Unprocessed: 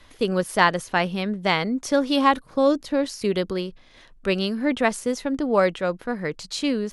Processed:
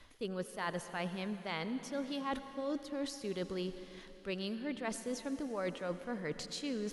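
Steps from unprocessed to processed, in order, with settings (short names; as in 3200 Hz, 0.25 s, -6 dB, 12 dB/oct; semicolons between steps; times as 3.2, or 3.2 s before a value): reverse; compressor 6:1, threshold -31 dBFS, peak gain reduction 17.5 dB; reverse; reverb RT60 3.6 s, pre-delay 73 ms, DRR 10.5 dB; gain -5 dB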